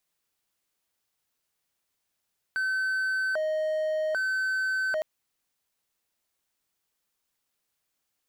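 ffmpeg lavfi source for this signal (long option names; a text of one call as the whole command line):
ffmpeg -f lavfi -i "aevalsrc='0.0708*(1-4*abs(mod((1076.5*t+453.5/0.63*(0.5-abs(mod(0.63*t,1)-0.5)))+0.25,1)-0.5))':duration=2.46:sample_rate=44100" out.wav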